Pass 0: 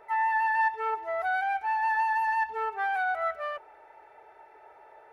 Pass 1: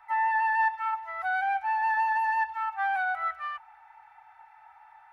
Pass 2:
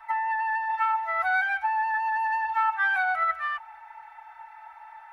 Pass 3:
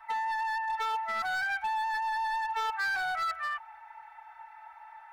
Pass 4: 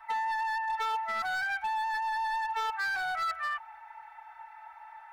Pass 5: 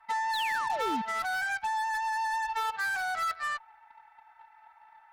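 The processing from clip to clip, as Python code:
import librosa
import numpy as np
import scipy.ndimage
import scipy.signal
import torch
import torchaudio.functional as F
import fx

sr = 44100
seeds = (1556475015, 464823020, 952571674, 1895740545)

y1 = scipy.signal.sosfilt(scipy.signal.cheby1(5, 1.0, [130.0, 760.0], 'bandstop', fs=sr, output='sos'), x)
y1 = fx.bass_treble(y1, sr, bass_db=-4, treble_db=-5)
y1 = y1 * 10.0 ** (1.5 / 20.0)
y2 = y1 + 0.98 * np.pad(y1, (int(4.5 * sr / 1000.0), 0))[:len(y1)]
y2 = fx.over_compress(y2, sr, threshold_db=-25.0, ratio=-1.0)
y3 = np.clip(y2, -10.0 ** (-24.5 / 20.0), 10.0 ** (-24.5 / 20.0))
y3 = y3 * 10.0 ** (-3.5 / 20.0)
y4 = fx.rider(y3, sr, range_db=10, speed_s=0.5)
y5 = fx.spec_paint(y4, sr, seeds[0], shape='fall', start_s=0.33, length_s=0.69, low_hz=200.0, high_hz=4400.0, level_db=-35.0)
y5 = fx.cheby_harmonics(y5, sr, harmonics=(7,), levels_db=(-21,), full_scale_db=-23.5)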